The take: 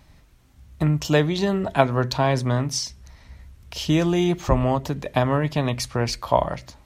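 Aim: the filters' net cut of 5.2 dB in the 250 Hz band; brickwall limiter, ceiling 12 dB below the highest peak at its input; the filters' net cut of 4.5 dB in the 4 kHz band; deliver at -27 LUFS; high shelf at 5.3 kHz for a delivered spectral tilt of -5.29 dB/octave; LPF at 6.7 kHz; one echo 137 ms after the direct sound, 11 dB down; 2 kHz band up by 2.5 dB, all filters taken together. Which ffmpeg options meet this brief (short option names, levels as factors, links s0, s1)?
-af "lowpass=6700,equalizer=f=250:t=o:g=-8.5,equalizer=f=2000:t=o:g=5,equalizer=f=4000:t=o:g=-4.5,highshelf=f=5300:g=-5,alimiter=limit=0.188:level=0:latency=1,aecho=1:1:137:0.282,volume=0.944"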